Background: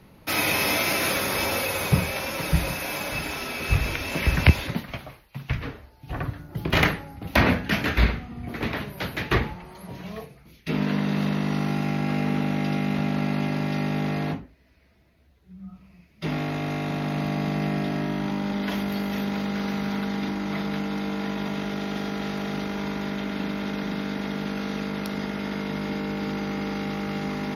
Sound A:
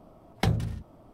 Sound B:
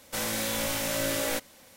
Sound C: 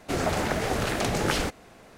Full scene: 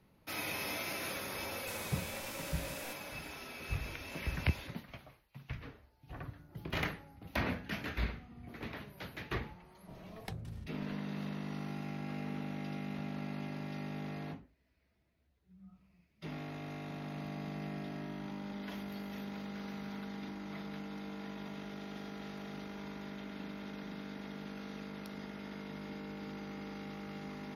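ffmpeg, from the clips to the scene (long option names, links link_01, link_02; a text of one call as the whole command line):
ffmpeg -i bed.wav -i cue0.wav -i cue1.wav -filter_complex "[0:a]volume=-15.5dB[link_01];[2:a]acompressor=threshold=-32dB:ratio=6:attack=3.2:release=140:knee=1:detection=peak[link_02];[1:a]acompressor=threshold=-36dB:ratio=5:attack=1.4:release=481:knee=1:detection=peak[link_03];[link_02]atrim=end=1.76,asetpts=PTS-STARTPTS,volume=-10dB,afade=type=in:duration=0.004:curve=hsin,afade=type=out:start_time=1.756:duration=0.004:curve=hsin,adelay=1540[link_04];[link_03]atrim=end=1.13,asetpts=PTS-STARTPTS,volume=-2dB,afade=type=in:duration=0.05,afade=type=out:start_time=1.08:duration=0.05,adelay=9850[link_05];[link_01][link_04][link_05]amix=inputs=3:normalize=0" out.wav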